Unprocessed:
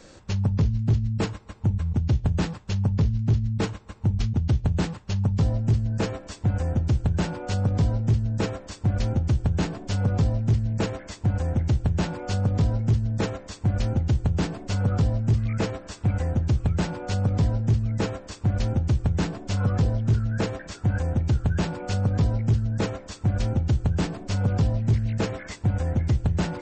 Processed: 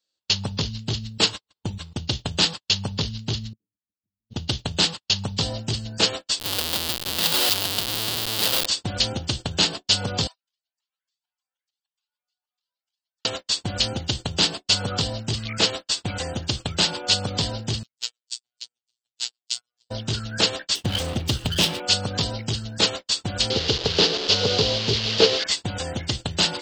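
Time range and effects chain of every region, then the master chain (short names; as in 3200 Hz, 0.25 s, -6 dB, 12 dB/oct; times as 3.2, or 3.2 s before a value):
3.53–4.3 compressor 2:1, threshold -36 dBFS + ladder low-pass 330 Hz, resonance 45%
6.39–8.66 compressor 20:1, threshold -26 dBFS + Schmitt trigger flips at -43.5 dBFS
10.27–13.25 HPF 910 Hz 24 dB/oct + compressor 20:1, threshold -49 dBFS + cascading flanger rising 1.8 Hz
17.83–19.9 differentiator + robotiser 121 Hz
20.75–21.8 minimum comb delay 0.35 ms + low shelf 500 Hz +4 dB
23.5–25.44 delta modulation 32 kbps, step -32 dBFS + bell 440 Hz +14.5 dB 0.5 oct
whole clip: RIAA curve recording; gate -37 dBFS, range -44 dB; band shelf 3700 Hz +11 dB 1 oct; gain +4.5 dB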